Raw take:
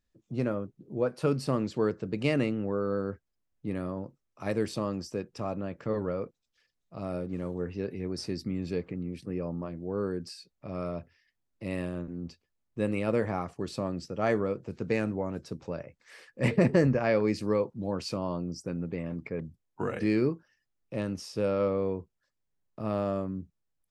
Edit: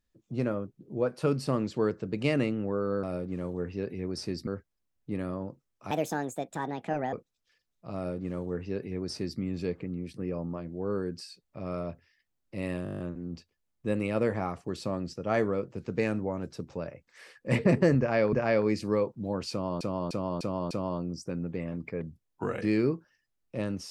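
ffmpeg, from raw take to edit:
-filter_complex "[0:a]asplit=18[a][b][c][d][e][f][g][h][i][j][k][l][m][n][o][p][q][r];[a]atrim=end=3.032[s];[b]atrim=start=7.038:end=8.482[t];[c]atrim=start=3.028:end=4.474[u];[d]atrim=start=4.47:end=6.21,asetpts=PTS-STARTPTS,asetrate=63063,aresample=44100,atrim=end_sample=53660,asetpts=PTS-STARTPTS[v];[e]atrim=start=6.206:end=11.942[w];[f]atrim=start=11.918:end=11.942[x];[g]atrim=start=11.918:end=11.942[y];[h]atrim=start=11.918:end=11.942[z];[i]atrim=start=11.918:end=11.942[aa];[j]atrim=start=11.918:end=11.942[ab];[k]atrim=start=11.918:end=11.942[ac];[l]atrim=start=11.918:end=11.942[ad];[m]atrim=start=11.918:end=17.252[ae];[n]atrim=start=16.908:end=18.392[af];[o]atrim=start=18.088:end=18.392[ag];[p]atrim=start=18.088:end=18.392[ah];[q]atrim=start=18.088:end=18.392[ai];[r]atrim=start=18.088[aj];[s][t]acrossfade=d=0.004:c1=hsin:c2=hsin[ak];[ak][u]acrossfade=d=0.004:c1=hsin:c2=hsin[al];[al][v]acrossfade=d=0.004:c1=hsin:c2=hsin[am];[am][w]acrossfade=d=0.004:c1=hsin:c2=hsin[an];[an][x]acrossfade=d=0.004:c1=hsin:c2=hsin[ao];[ao][y]acrossfade=d=0.004:c1=hsin:c2=hsin[ap];[ap][z]acrossfade=d=0.004:c1=hsin:c2=hsin[aq];[aq][aa]acrossfade=d=0.004:c1=hsin:c2=hsin[ar];[ar][ab]acrossfade=d=0.004:c1=hsin:c2=hsin[as];[as][ac]acrossfade=d=0.004:c1=hsin:c2=hsin[at];[at][ad]acrossfade=d=0.004:c1=hsin:c2=hsin[au];[au][ae]acrossfade=d=0.004:c1=hsin:c2=hsin[av];[av][af]acrossfade=d=0.004:c1=hsin:c2=hsin[aw];[aw][ag]acrossfade=d=0.004:c1=hsin:c2=hsin[ax];[ax][ah]acrossfade=d=0.004:c1=hsin:c2=hsin[ay];[ay][ai]acrossfade=d=0.004:c1=hsin:c2=hsin[az];[az][aj]acrossfade=d=0.004:c1=hsin:c2=hsin"

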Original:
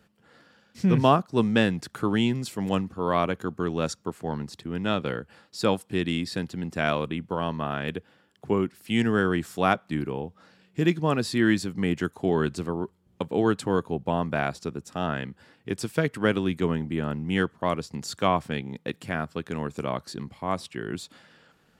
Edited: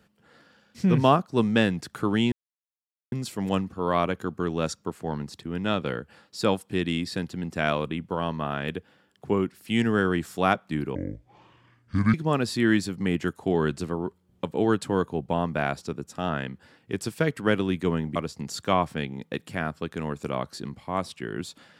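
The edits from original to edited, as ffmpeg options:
-filter_complex "[0:a]asplit=5[a][b][c][d][e];[a]atrim=end=2.32,asetpts=PTS-STARTPTS,afade=t=out:st=2.316:d=0.004:c=hsin,apad=pad_dur=0.8[f];[b]atrim=start=2.32:end=10.154,asetpts=PTS-STARTPTS,afade=t=in:d=0.004:c=hsin[g];[c]atrim=start=10.15:end=10.91,asetpts=PTS-STARTPTS,asetrate=28224,aresample=44100[h];[d]atrim=start=10.906:end=16.932[i];[e]atrim=start=17.698[j];[f][g]concat=n=2:v=0:a=1[k];[k][h]acrossfade=d=0.004:c1=hsin:c2=hsin[l];[l][i]acrossfade=d=0.004:c1=hsin:c2=hsin[m];[m][j]acrossfade=d=0.004:c1=hsin:c2=hsin"

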